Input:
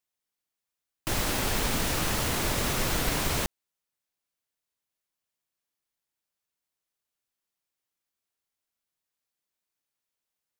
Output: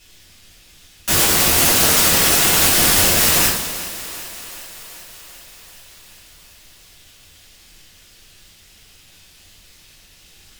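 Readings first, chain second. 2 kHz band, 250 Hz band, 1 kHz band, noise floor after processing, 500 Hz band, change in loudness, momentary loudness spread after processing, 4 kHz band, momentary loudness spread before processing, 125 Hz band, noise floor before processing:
+13.0 dB, +8.5 dB, +10.5 dB, -49 dBFS, +10.0 dB, +15.0 dB, 18 LU, +15.5 dB, 4 LU, +6.0 dB, under -85 dBFS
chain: cycle switcher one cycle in 2, muted; frequency weighting D; in parallel at -2.5 dB: compressor with a negative ratio -36 dBFS, ratio -1; on the sum: added noise brown -76 dBFS; sine folder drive 19 dB, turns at -10.5 dBFS; on a send: thinning echo 385 ms, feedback 70%, high-pass 170 Hz, level -17 dB; on the sum: two-slope reverb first 0.58 s, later 2.9 s, from -16 dB, DRR -10 dB; trim -7.5 dB

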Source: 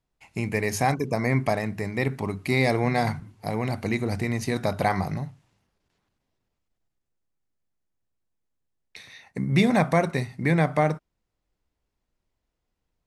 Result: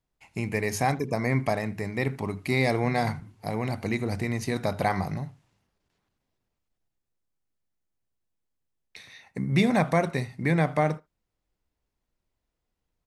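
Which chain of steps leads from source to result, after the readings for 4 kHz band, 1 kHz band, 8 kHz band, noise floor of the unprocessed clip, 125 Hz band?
-2.0 dB, -2.0 dB, -2.0 dB, -81 dBFS, -2.0 dB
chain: speakerphone echo 80 ms, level -21 dB; trim -2 dB

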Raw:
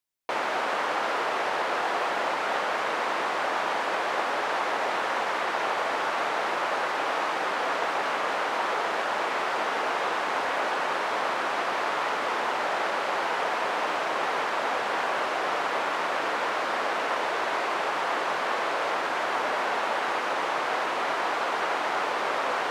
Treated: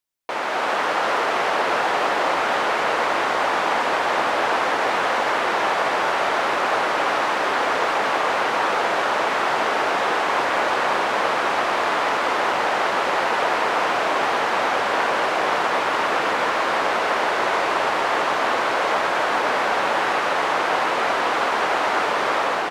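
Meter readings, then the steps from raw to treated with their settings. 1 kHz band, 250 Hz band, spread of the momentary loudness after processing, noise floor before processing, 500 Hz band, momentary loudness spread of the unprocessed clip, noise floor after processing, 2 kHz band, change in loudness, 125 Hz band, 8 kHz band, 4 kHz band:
+6.5 dB, +7.5 dB, 0 LU, -29 dBFS, +7.0 dB, 0 LU, -23 dBFS, +6.5 dB, +6.5 dB, no reading, +6.5 dB, +6.5 dB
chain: level rider gain up to 4 dB; on a send: frequency-shifting echo 334 ms, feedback 62%, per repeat -38 Hz, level -7 dB; on the sum: trim +1.5 dB

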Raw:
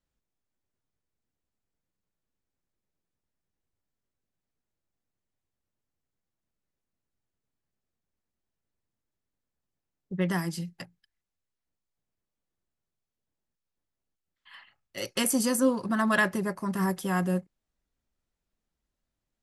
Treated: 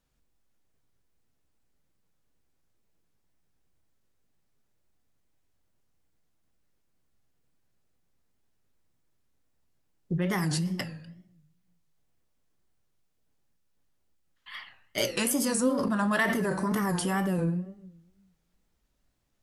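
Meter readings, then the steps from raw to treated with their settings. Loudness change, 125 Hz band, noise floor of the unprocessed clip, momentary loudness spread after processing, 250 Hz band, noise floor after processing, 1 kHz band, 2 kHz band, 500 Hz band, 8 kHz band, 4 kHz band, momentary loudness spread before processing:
-0.5 dB, +2.5 dB, under -85 dBFS, 18 LU, 0.0 dB, -73 dBFS, 0.0 dB, -1.0 dB, +0.5 dB, +0.5 dB, +2.0 dB, 16 LU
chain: simulated room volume 180 m³, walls mixed, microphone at 0.38 m; in parallel at +1.5 dB: compressor with a negative ratio -33 dBFS, ratio -0.5; on the sum: wow and flutter 140 cents; trim -3 dB

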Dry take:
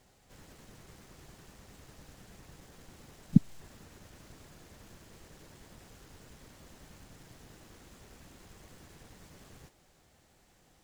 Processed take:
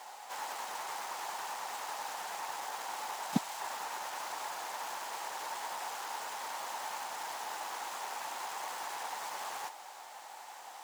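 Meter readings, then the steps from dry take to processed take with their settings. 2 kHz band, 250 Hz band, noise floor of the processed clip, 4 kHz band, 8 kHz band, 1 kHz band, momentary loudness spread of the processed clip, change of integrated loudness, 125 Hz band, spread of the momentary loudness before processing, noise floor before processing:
+17.0 dB, -9.0 dB, -50 dBFS, +15.0 dB, +14.5 dB, +24.5 dB, 3 LU, -12.0 dB, -14.5 dB, 0 LU, -66 dBFS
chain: resonant high-pass 870 Hz, resonance Q 4.9; trim +14.5 dB

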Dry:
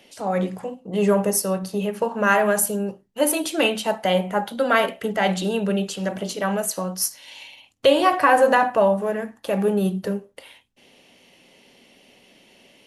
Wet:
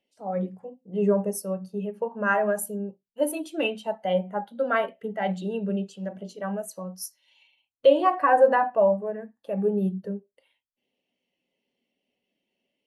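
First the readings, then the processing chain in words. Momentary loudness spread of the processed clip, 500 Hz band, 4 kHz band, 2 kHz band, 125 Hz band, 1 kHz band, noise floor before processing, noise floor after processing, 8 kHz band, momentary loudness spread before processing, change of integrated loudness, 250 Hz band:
16 LU, -3.0 dB, -12.0 dB, -7.0 dB, no reading, -4.5 dB, -57 dBFS, -82 dBFS, -13.0 dB, 11 LU, -4.5 dB, -5.5 dB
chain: spectral contrast expander 1.5:1; trim -3 dB

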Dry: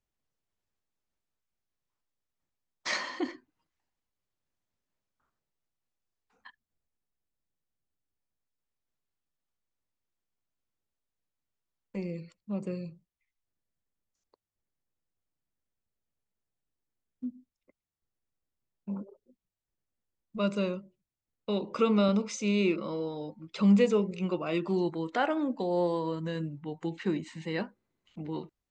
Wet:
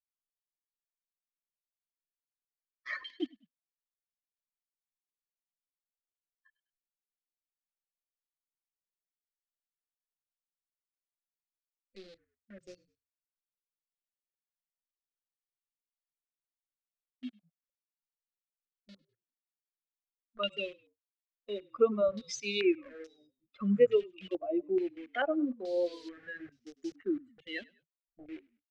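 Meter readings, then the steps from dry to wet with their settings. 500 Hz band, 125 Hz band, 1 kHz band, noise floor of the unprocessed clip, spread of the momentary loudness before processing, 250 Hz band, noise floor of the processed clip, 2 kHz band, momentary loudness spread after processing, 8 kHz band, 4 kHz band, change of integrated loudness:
-1.0 dB, under -10 dB, -8.0 dB, under -85 dBFS, 16 LU, -7.0 dB, under -85 dBFS, -2.5 dB, 21 LU, -4.0 dB, -1.5 dB, -2.0 dB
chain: expander on every frequency bin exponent 2; reverb removal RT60 1.1 s; in parallel at -6 dB: bit crusher 8-bit; on the sum: static phaser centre 390 Hz, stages 4; on a send: frequency-shifting echo 101 ms, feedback 38%, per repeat -42 Hz, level -24 dB; on the sum: step-sequenced low-pass 2.3 Hz 720–5700 Hz

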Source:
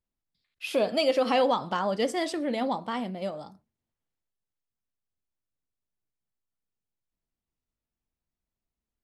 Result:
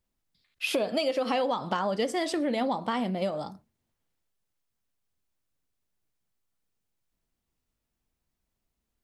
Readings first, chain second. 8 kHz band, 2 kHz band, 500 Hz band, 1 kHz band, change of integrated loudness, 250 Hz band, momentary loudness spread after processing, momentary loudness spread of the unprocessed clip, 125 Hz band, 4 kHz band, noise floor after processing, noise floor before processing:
+1.5 dB, 0.0 dB, -2.0 dB, -1.5 dB, -1.5 dB, +0.5 dB, 5 LU, 12 LU, +2.5 dB, -1.0 dB, -83 dBFS, under -85 dBFS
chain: compression, threshold -32 dBFS, peak gain reduction 12.5 dB; trim +7 dB

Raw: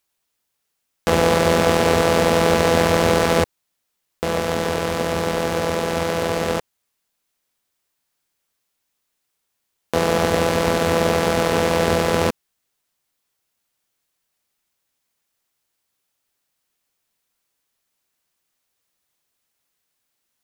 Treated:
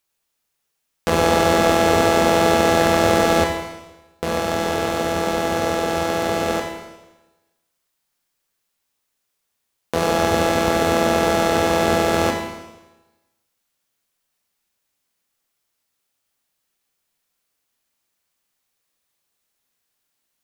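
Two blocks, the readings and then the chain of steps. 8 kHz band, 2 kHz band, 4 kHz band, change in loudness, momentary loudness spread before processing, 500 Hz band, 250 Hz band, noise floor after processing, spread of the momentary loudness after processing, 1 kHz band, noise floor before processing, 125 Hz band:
+0.5 dB, +1.0 dB, +0.5 dB, +0.5 dB, 8 LU, 0.0 dB, +1.5 dB, -76 dBFS, 11 LU, +2.5 dB, -76 dBFS, -2.5 dB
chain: Schroeder reverb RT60 1.1 s, combs from 27 ms, DRR 3 dB; trim -1.5 dB

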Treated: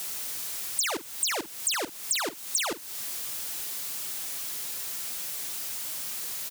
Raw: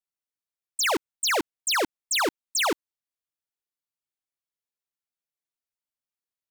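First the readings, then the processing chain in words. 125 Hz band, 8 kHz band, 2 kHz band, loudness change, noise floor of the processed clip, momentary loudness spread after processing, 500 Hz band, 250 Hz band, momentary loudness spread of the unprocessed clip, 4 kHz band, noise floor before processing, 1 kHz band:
-2.0 dB, +2.5 dB, -6.0 dB, -4.5 dB, -43 dBFS, 4 LU, -7.5 dB, -7.0 dB, 2 LU, -3.0 dB, under -85 dBFS, -7.5 dB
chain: jump at every zero crossing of -38 dBFS; high-pass 78 Hz; treble shelf 3.4 kHz +8.5 dB; compression 6:1, threshold -33 dBFS, peak gain reduction 15.5 dB; doubling 46 ms -14 dB; crackling interface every 0.14 s, samples 256, repeat, from 0.75 s; trim +5.5 dB

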